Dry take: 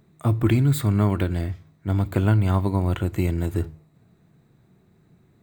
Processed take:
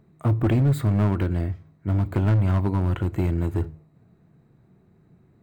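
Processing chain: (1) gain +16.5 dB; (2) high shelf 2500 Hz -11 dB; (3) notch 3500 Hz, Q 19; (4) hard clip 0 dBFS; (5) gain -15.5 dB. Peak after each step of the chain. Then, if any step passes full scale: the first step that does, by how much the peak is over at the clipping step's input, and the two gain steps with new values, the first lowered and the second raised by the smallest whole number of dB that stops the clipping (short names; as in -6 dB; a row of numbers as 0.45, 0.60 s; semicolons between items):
+9.0, +8.5, +8.5, 0.0, -15.5 dBFS; step 1, 8.5 dB; step 1 +7.5 dB, step 5 -6.5 dB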